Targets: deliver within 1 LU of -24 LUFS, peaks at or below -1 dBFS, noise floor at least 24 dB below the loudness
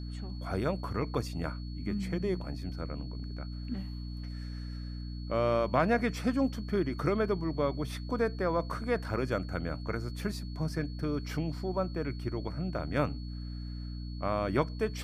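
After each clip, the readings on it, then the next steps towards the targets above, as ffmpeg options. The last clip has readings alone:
hum 60 Hz; harmonics up to 300 Hz; hum level -36 dBFS; steady tone 4400 Hz; tone level -53 dBFS; loudness -33.5 LUFS; peak -13.5 dBFS; loudness target -24.0 LUFS
-> -af "bandreject=f=60:t=h:w=4,bandreject=f=120:t=h:w=4,bandreject=f=180:t=h:w=4,bandreject=f=240:t=h:w=4,bandreject=f=300:t=h:w=4"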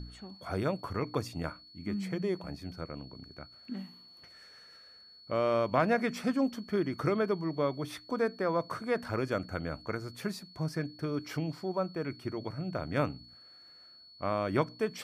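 hum none; steady tone 4400 Hz; tone level -53 dBFS
-> -af "bandreject=f=4.4k:w=30"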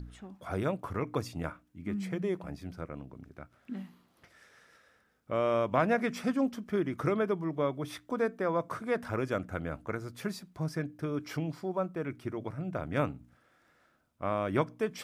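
steady tone none; loudness -33.5 LUFS; peak -13.0 dBFS; loudness target -24.0 LUFS
-> -af "volume=9.5dB"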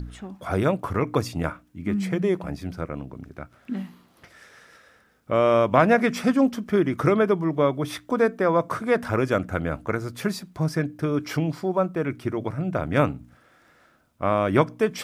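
loudness -24.0 LUFS; peak -3.5 dBFS; noise floor -59 dBFS

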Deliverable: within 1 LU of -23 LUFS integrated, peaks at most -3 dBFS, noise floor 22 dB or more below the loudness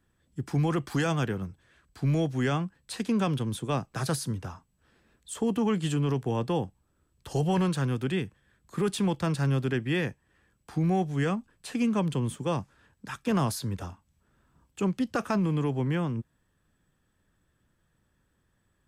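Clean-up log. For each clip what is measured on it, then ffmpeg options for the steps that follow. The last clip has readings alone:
loudness -29.0 LUFS; peak -17.5 dBFS; loudness target -23.0 LUFS
-> -af "volume=6dB"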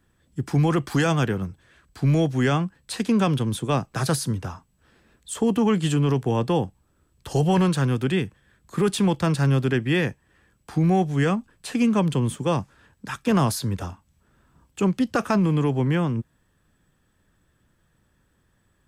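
loudness -23.5 LUFS; peak -11.5 dBFS; noise floor -67 dBFS

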